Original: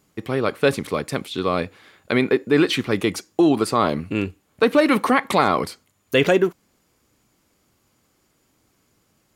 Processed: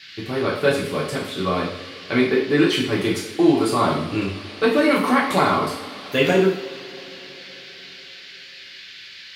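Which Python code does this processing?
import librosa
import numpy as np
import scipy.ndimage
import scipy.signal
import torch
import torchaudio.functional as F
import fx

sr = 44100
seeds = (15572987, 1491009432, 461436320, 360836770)

y = fx.dmg_noise_band(x, sr, seeds[0], low_hz=1600.0, high_hz=4700.0, level_db=-41.0)
y = fx.rev_double_slope(y, sr, seeds[1], early_s=0.56, late_s=4.6, knee_db=-22, drr_db=-5.0)
y = y * librosa.db_to_amplitude(-6.0)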